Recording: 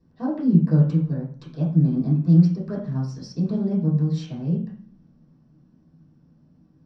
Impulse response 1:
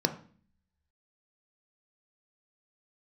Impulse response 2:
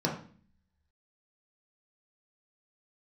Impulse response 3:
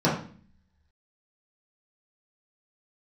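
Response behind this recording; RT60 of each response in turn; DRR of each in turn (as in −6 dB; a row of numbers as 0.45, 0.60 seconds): 3; 0.45, 0.45, 0.45 seconds; 6.5, −3.0, −8.5 decibels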